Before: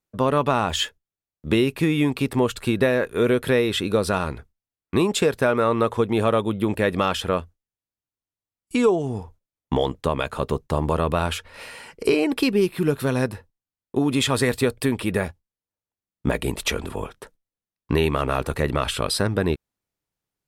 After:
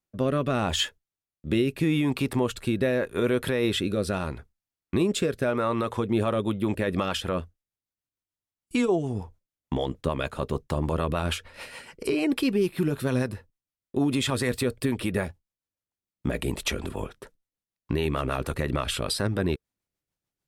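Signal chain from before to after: rotary speaker horn 0.8 Hz, later 6.7 Hz, at 5.79; limiter -15 dBFS, peak gain reduction 8 dB; notch 450 Hz, Q 12

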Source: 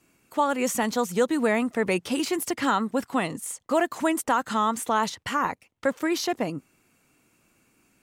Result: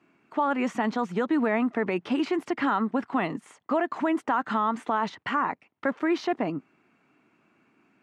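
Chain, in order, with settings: bell 510 Hz -9.5 dB 0.22 oct; limiter -19 dBFS, peak gain reduction 6.5 dB; BPF 190–2100 Hz; gain +3.5 dB

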